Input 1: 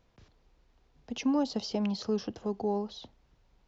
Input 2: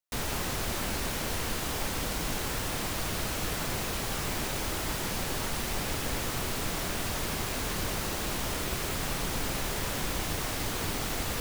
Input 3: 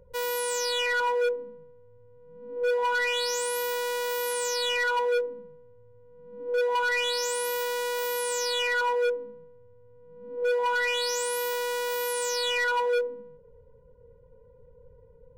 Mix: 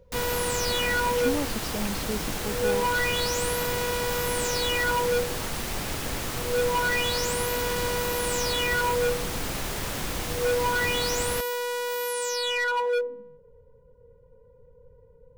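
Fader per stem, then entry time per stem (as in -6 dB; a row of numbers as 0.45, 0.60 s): -2.0, +1.0, 0.0 dB; 0.00, 0.00, 0.00 s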